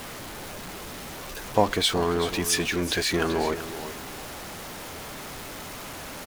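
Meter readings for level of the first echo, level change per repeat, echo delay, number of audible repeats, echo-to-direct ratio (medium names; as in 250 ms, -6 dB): -12.0 dB, -13.0 dB, 381 ms, 2, -12.0 dB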